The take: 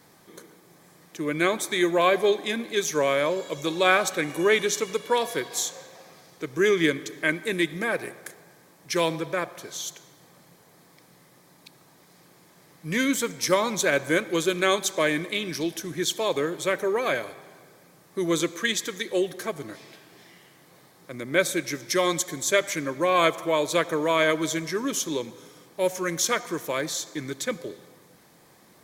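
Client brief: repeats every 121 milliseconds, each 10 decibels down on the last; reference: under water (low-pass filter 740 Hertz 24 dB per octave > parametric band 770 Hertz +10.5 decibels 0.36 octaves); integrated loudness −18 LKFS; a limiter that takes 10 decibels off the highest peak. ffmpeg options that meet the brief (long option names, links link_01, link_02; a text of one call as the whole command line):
ffmpeg -i in.wav -af "alimiter=limit=-14dB:level=0:latency=1,lowpass=frequency=740:width=0.5412,lowpass=frequency=740:width=1.3066,equalizer=frequency=770:width_type=o:width=0.36:gain=10.5,aecho=1:1:121|242|363|484:0.316|0.101|0.0324|0.0104,volume=10dB" out.wav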